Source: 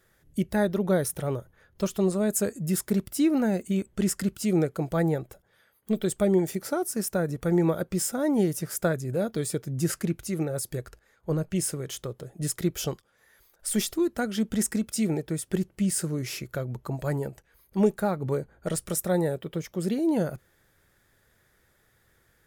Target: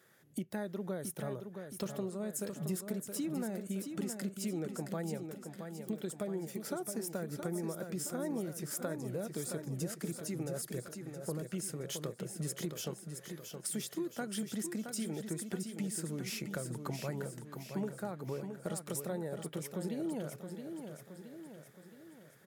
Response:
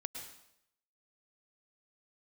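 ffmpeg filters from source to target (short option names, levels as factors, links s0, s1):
-filter_complex "[0:a]highpass=f=130:w=0.5412,highpass=f=130:w=1.3066,acompressor=threshold=0.0141:ratio=5,asplit=2[s0][s1];[s1]aecho=0:1:670|1340|2010|2680|3350|4020:0.447|0.228|0.116|0.0593|0.0302|0.0154[s2];[s0][s2]amix=inputs=2:normalize=0"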